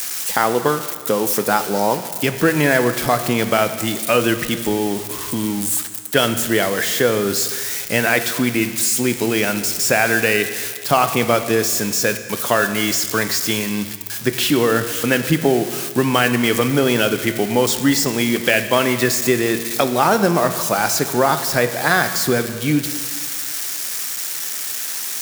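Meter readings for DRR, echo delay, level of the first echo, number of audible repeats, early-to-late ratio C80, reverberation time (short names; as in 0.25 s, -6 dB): 9.0 dB, none, none, none, 11.5 dB, 1.8 s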